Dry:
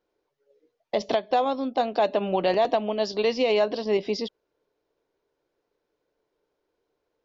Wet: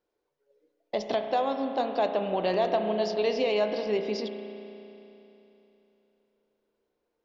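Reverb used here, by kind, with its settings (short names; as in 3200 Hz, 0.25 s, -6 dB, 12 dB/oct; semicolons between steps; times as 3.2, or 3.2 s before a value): spring tank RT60 3.2 s, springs 33 ms, chirp 75 ms, DRR 5.5 dB; gain -4.5 dB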